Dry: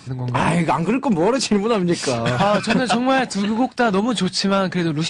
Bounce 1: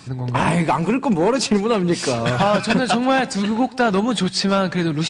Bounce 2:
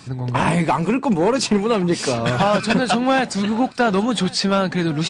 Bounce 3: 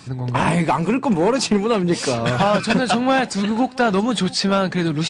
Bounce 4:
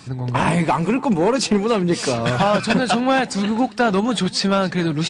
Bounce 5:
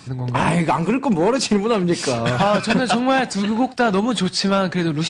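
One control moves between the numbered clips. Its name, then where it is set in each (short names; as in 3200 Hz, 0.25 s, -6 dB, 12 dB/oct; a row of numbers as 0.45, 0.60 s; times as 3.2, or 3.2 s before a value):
echo, time: 139, 1110, 685, 272, 78 ms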